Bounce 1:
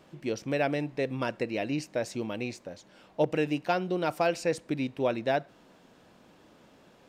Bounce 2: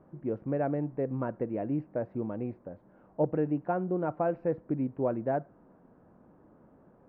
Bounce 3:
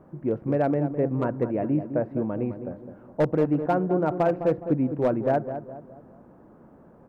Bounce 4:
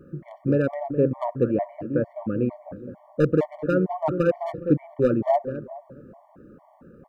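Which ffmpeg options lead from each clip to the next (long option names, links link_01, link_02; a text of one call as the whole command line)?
ffmpeg -i in.wav -af "lowpass=frequency=1400:width=0.5412,lowpass=frequency=1400:width=1.3066,lowshelf=frequency=400:gain=7,volume=-4.5dB" out.wav
ffmpeg -i in.wav -filter_complex "[0:a]volume=22dB,asoftclip=hard,volume=-22dB,asplit=2[link_01][link_02];[link_02]adelay=208,lowpass=frequency=1200:poles=1,volume=-9dB,asplit=2[link_03][link_04];[link_04]adelay=208,lowpass=frequency=1200:poles=1,volume=0.45,asplit=2[link_05][link_06];[link_06]adelay=208,lowpass=frequency=1200:poles=1,volume=0.45,asplit=2[link_07][link_08];[link_08]adelay=208,lowpass=frequency=1200:poles=1,volume=0.45,asplit=2[link_09][link_10];[link_10]adelay=208,lowpass=frequency=1200:poles=1,volume=0.45[link_11];[link_01][link_03][link_05][link_07][link_09][link_11]amix=inputs=6:normalize=0,volume=6.5dB" out.wav
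ffmpeg -i in.wav -af "afftfilt=real='re*gt(sin(2*PI*2.2*pts/sr)*(1-2*mod(floor(b*sr/1024/590),2)),0)':imag='im*gt(sin(2*PI*2.2*pts/sr)*(1-2*mod(floor(b*sr/1024/590),2)),0)':win_size=1024:overlap=0.75,volume=4.5dB" out.wav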